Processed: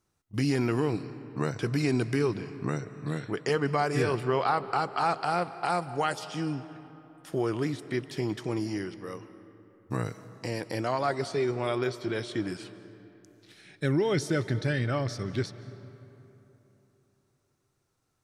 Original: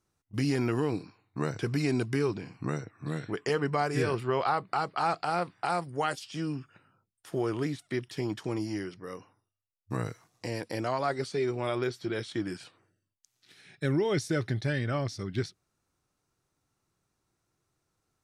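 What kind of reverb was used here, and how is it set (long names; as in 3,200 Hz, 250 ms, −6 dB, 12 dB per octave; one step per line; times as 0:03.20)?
comb and all-pass reverb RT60 3.4 s, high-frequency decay 0.55×, pre-delay 115 ms, DRR 14.5 dB
level +1.5 dB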